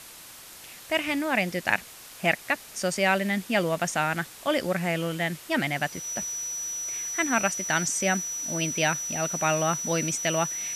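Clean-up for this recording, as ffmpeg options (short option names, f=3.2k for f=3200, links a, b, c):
-af "adeclick=t=4,bandreject=f=5.9k:w=30,afwtdn=0.0063"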